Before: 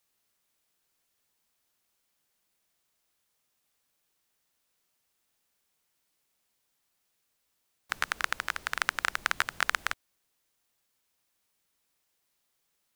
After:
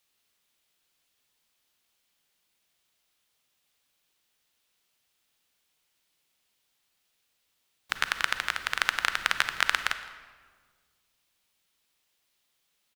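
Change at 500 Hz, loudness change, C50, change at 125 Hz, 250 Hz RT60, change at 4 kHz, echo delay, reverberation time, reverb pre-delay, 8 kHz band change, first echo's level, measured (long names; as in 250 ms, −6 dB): +1.0 dB, +3.0 dB, 10.5 dB, +1.0 dB, 2.2 s, +6.0 dB, 164 ms, 1.7 s, 33 ms, +1.5 dB, −21.5 dB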